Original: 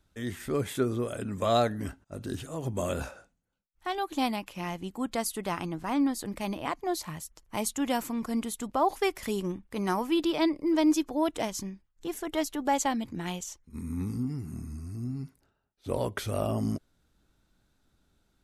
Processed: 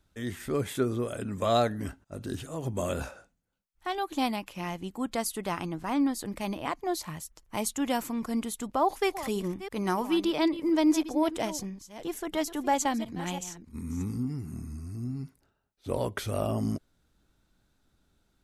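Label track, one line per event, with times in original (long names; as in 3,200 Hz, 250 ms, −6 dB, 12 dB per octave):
8.680000	14.040000	delay that plays each chunk backwards 336 ms, level −13 dB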